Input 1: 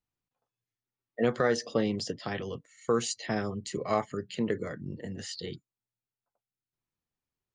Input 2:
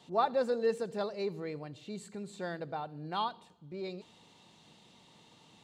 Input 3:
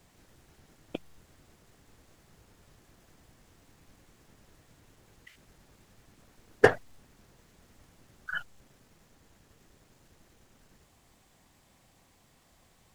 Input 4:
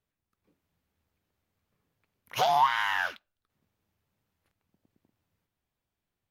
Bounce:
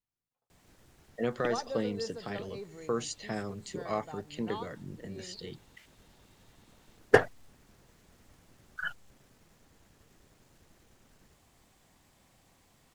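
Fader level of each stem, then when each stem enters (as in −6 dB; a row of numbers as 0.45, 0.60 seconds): −5.0 dB, −8.5 dB, −1.0 dB, muted; 0.00 s, 1.35 s, 0.50 s, muted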